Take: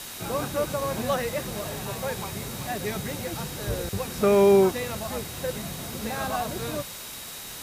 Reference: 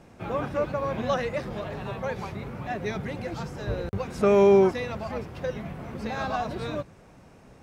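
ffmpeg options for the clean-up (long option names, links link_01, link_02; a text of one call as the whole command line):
ffmpeg -i in.wav -af "bandreject=frequency=3800:width=30,afwtdn=0.013" out.wav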